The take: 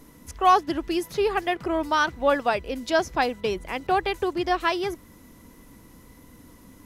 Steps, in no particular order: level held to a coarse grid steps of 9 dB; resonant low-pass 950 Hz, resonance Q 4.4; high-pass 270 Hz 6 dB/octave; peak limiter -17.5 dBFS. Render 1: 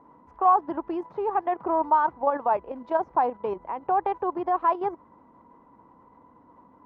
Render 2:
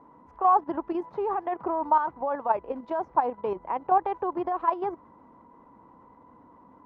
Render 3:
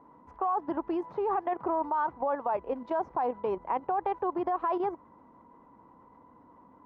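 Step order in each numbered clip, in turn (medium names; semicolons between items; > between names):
level held to a coarse grid > high-pass > peak limiter > resonant low-pass; high-pass > peak limiter > resonant low-pass > level held to a coarse grid; resonant low-pass > peak limiter > level held to a coarse grid > high-pass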